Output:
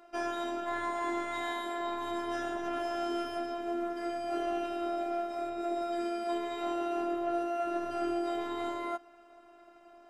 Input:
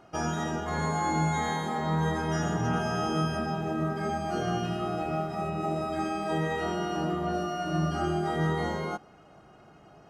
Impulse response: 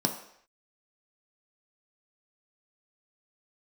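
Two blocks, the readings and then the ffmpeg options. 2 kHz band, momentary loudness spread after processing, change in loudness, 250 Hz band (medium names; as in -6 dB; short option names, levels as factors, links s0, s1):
-6.0 dB, 3 LU, -4.5 dB, -5.0 dB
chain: -af "aeval=exprs='0.15*(cos(1*acos(clip(val(0)/0.15,-1,1)))-cos(1*PI/2))+0.00841*(cos(5*acos(clip(val(0)/0.15,-1,1)))-cos(5*PI/2))':c=same,afftfilt=real='hypot(re,im)*cos(PI*b)':imag='0':win_size=512:overlap=0.75,bass=f=250:g=-10,treble=f=4000:g=-2"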